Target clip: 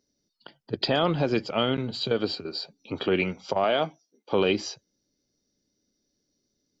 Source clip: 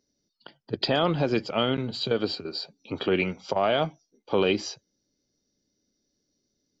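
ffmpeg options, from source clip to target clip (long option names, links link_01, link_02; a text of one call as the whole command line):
ffmpeg -i in.wav -filter_complex "[0:a]asettb=1/sr,asplit=3[link_01][link_02][link_03];[link_01]atrim=end=3.644[link_04];[link_02]atrim=start=3.64:end=4.33,asetpts=PTS-STARTPTS,afade=type=in:duration=0.004:curve=qsin,afade=type=out:start_time=0.686:duration=0.004:curve=qsin,highpass=200[link_05];[link_03]atrim=start=4.326[link_06];[link_04][link_05]acrossfade=duration=0.004:curve1=hsin:curve2=qsin[link_07];[link_07][link_06]acrossfade=duration=0.004:curve1=qsin:curve2=hsin" out.wav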